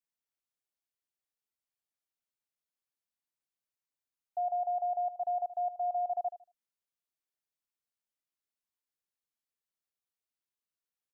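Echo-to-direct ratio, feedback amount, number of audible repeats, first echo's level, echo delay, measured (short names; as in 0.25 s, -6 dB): -13.5 dB, 25%, 2, -14.0 dB, 77 ms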